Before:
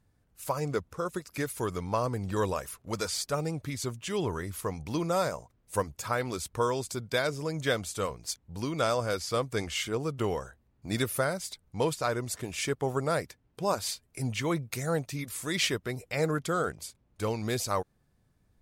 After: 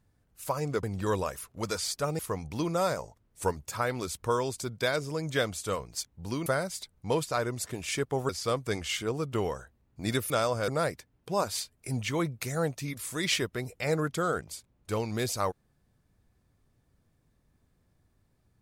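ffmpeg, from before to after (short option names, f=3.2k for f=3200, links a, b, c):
-filter_complex "[0:a]asplit=9[a][b][c][d][e][f][g][h][i];[a]atrim=end=0.832[j];[b]atrim=start=2.128:end=3.492[k];[c]atrim=start=4.538:end=5.334[l];[d]atrim=start=5.33:end=5.87,asetpts=PTS-STARTPTS,asetrate=41013,aresample=44100,atrim=end_sample=25606,asetpts=PTS-STARTPTS[m];[e]atrim=start=5.866:end=8.772[n];[f]atrim=start=11.158:end=12.992[o];[g]atrim=start=9.148:end=11.162[p];[h]atrim=start=8.768:end=9.152[q];[i]atrim=start=12.988[r];[j][k]acrossfade=d=0.004:c1=hsin:c2=hsin[s];[s][l]acrossfade=d=0.004:c1=hsin:c2=hsin[t];[t][m]acrossfade=d=0.004:c1=hsin:c2=hsin[u];[u][n]acrossfade=d=0.004:c1=hsin:c2=hsin[v];[v][o]acrossfade=d=0.004:c1=hsin:c2=hsin[w];[w][p]acrossfade=d=0.004:c1=hsin:c2=hsin[x];[x][q]acrossfade=d=0.004:c1=hsin:c2=hsin[y];[y][r]acrossfade=d=0.004:c1=hsin:c2=hsin"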